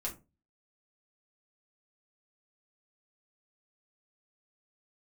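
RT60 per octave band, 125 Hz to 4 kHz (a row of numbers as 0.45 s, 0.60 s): 0.45 s, 0.40 s, 0.30 s, 0.25 s, 0.20 s, 0.15 s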